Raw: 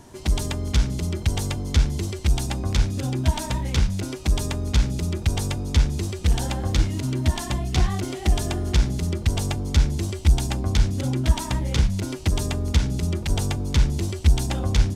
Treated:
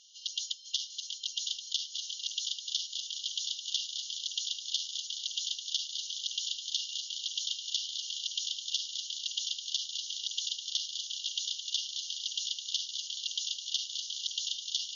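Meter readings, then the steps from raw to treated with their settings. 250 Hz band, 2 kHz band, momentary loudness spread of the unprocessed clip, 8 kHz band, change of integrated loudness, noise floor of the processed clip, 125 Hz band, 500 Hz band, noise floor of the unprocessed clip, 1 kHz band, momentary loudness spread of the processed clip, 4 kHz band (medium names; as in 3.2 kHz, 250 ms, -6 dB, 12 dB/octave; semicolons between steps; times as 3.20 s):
under -40 dB, -17.5 dB, 3 LU, -2.0 dB, -9.5 dB, -46 dBFS, under -40 dB, under -40 dB, -34 dBFS, under -40 dB, 3 LU, +3.0 dB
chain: shuffle delay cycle 1210 ms, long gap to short 1.5:1, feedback 66%, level -7.5 dB; overdrive pedal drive 16 dB, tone 3.6 kHz, clips at -5 dBFS; FFT band-pass 2.8–6.9 kHz; trim -5.5 dB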